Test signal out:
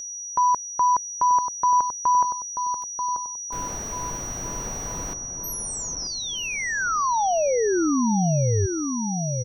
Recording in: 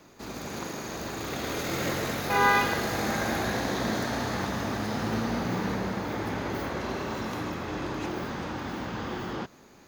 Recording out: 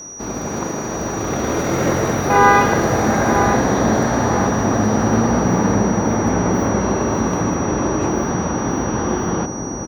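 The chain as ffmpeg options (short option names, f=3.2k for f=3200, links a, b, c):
-filter_complex "[0:a]acrossover=split=1500[a][b];[a]crystalizer=i=9:c=0[c];[c][b]amix=inputs=2:normalize=0,acontrast=57,aeval=exprs='val(0)+0.0501*sin(2*PI*5800*n/s)':c=same,tiltshelf=f=1.4k:g=6.5,asplit=2[d][e];[e]adelay=936,lowpass=f=1.1k:p=1,volume=-5.5dB,asplit=2[f][g];[g]adelay=936,lowpass=f=1.1k:p=1,volume=0.53,asplit=2[h][i];[i]adelay=936,lowpass=f=1.1k:p=1,volume=0.53,asplit=2[j][k];[k]adelay=936,lowpass=f=1.1k:p=1,volume=0.53,asplit=2[l][m];[m]adelay=936,lowpass=f=1.1k:p=1,volume=0.53,asplit=2[n][o];[o]adelay=936,lowpass=f=1.1k:p=1,volume=0.53,asplit=2[p][q];[q]adelay=936,lowpass=f=1.1k:p=1,volume=0.53[r];[d][f][h][j][l][n][p][r]amix=inputs=8:normalize=0"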